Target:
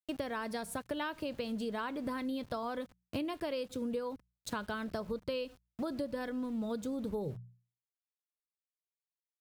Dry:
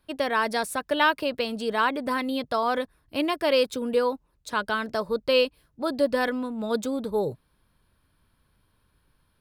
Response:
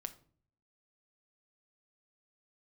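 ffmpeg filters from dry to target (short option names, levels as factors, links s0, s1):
-filter_complex "[0:a]asplit=2[s0][s1];[1:a]atrim=start_sample=2205,highshelf=f=4600:g=6[s2];[s1][s2]afir=irnorm=-1:irlink=0,volume=0.794[s3];[s0][s3]amix=inputs=2:normalize=0,aeval=exprs='val(0)*gte(abs(val(0)),0.0112)':c=same,lowshelf=f=310:g=10.5,bandreject=f=60:t=h:w=6,bandreject=f=120:t=h:w=6,bandreject=f=180:t=h:w=6,acompressor=threshold=0.0398:ratio=6,equalizer=f=91:w=0.88:g=6.5,volume=0.422"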